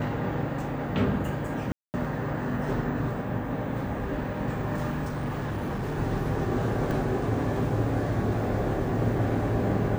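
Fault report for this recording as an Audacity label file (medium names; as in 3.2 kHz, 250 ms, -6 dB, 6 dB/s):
1.720000	1.940000	dropout 219 ms
5.070000	5.980000	clipped -27 dBFS
6.910000	6.910000	dropout 2.2 ms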